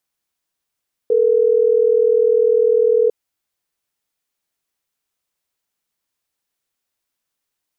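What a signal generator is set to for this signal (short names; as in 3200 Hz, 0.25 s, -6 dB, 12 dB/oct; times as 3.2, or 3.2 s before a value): call progress tone ringback tone, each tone -14 dBFS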